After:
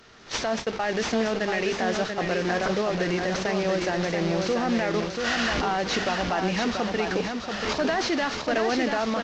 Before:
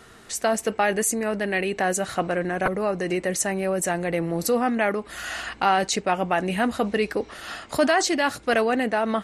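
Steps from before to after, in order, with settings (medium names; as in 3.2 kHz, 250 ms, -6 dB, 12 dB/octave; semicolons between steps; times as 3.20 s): one-bit delta coder 32 kbps, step -27 dBFS; recorder AGC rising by 15 dB/s; hum notches 50/100/150/200 Hz; gate -28 dBFS, range -20 dB; peak limiter -17 dBFS, peak gain reduction 7.5 dB; feedback delay 685 ms, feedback 37%, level -5 dB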